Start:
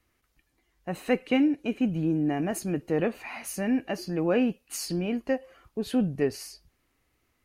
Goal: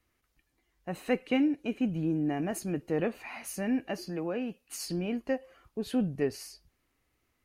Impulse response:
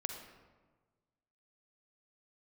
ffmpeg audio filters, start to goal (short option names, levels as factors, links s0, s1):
-filter_complex "[0:a]asettb=1/sr,asplit=3[s0][s1][s2];[s0]atrim=end=4.044[s3];[s1]atrim=start=4.04:end=4.8,asetpts=PTS-STARTPTS,afade=t=in:d=0.004:c=qsin,afade=t=out:st=0.756:d=0.004:c=qsin,acrossover=split=130|490[s4][s5][s6];[s4]acompressor=threshold=0.00178:ratio=4[s7];[s5]acompressor=threshold=0.0282:ratio=4[s8];[s6]acompressor=threshold=0.02:ratio=4[s9];[s7][s8][s9]amix=inputs=3:normalize=0[s10];[s2]atrim=start=4.796[s11];[s3][s10]acrossfade=d=0.004:c1=hsin:c2=qsin[s12];[s12][s11]acrossfade=d=0.004:c1=qsin:c2=hsin,volume=0.668"